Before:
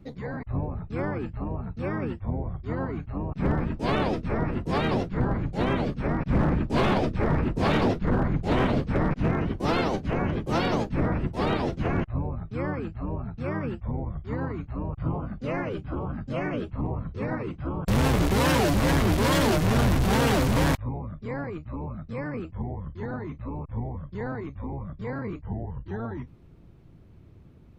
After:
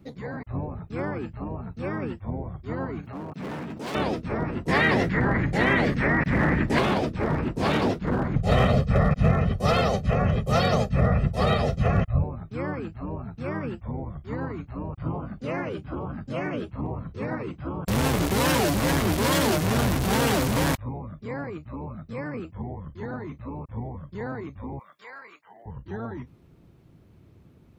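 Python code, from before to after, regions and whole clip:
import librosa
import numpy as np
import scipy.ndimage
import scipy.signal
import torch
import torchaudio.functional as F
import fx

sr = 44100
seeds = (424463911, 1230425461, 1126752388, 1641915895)

y = fx.chain(x, sr, fx.highpass(hz=150.0, slope=12),
    fx.clip_hard(threshold_db=-31.0),
    fx.pre_swell(db_per_s=52.0), at=(3.01, 3.95))
y = fx.chain(y, sr, fx.peak_eq(hz=1900.0, db=15.0, octaves=0.46),
    fx.env_flatten(amount_pct=70), at=(4.68, 6.79))
y = fx.chain(y, sr, fx.low_shelf(hz=170.0, db=7.0),
    fx.comb(ms=1.6, depth=0.96), at=(8.36, 12.24))
y = fx.chain(y, sr, fx.highpass(hz=1200.0, slope=12),
    fx.band_squash(depth_pct=40), at=(24.79, 25.66))
y = fx.highpass(y, sr, hz=91.0, slope=6)
y = fx.high_shelf(y, sr, hz=6300.0, db=6.5)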